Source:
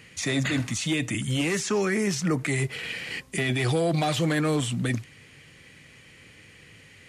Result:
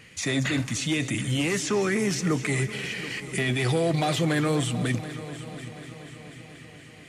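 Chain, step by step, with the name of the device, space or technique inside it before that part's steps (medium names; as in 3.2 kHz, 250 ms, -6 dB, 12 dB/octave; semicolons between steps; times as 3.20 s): multi-head tape echo (multi-head delay 243 ms, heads first and third, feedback 63%, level -16 dB; wow and flutter 22 cents)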